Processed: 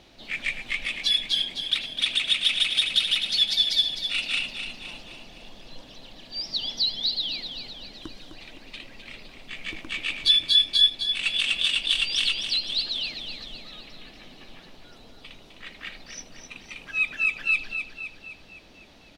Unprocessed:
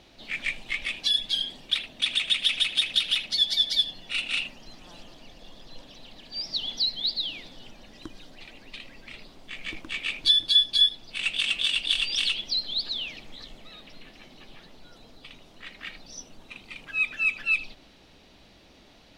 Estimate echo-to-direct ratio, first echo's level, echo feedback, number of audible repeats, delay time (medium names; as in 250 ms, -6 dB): -6.5 dB, -8.0 dB, 52%, 5, 257 ms